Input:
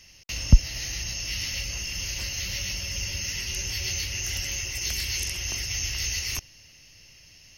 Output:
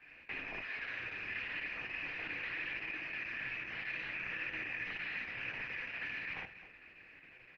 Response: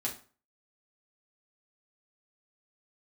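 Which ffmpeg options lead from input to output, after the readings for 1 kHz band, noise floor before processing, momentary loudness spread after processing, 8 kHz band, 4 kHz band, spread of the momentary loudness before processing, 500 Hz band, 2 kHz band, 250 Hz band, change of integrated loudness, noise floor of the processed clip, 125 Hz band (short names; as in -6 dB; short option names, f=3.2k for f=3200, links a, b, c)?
-1.0 dB, -53 dBFS, 10 LU, under -40 dB, -20.0 dB, 8 LU, -6.5 dB, -2.0 dB, -15.5 dB, -11.5 dB, -58 dBFS, -28.0 dB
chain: -filter_complex "[0:a]acrossover=split=100|890[a][b][c];[a]acompressor=threshold=-43dB:ratio=4[d];[b]acompressor=threshold=-50dB:ratio=4[e];[c]acompressor=threshold=-34dB:ratio=4[f];[d][e][f]amix=inputs=3:normalize=0,flanger=delay=18.5:depth=7.3:speed=0.39,aecho=1:1:55.39|262.4:0.891|0.251,asplit=2[g][h];[1:a]atrim=start_sample=2205[i];[h][i]afir=irnorm=-1:irlink=0,volume=-8.5dB[j];[g][j]amix=inputs=2:normalize=0,highpass=f=310:t=q:w=0.5412,highpass=f=310:t=q:w=1.307,lowpass=f=2.7k:t=q:w=0.5176,lowpass=f=2.7k:t=q:w=0.7071,lowpass=f=2.7k:t=q:w=1.932,afreqshift=-240,volume=1.5dB" -ar 48000 -c:a libopus -b:a 10k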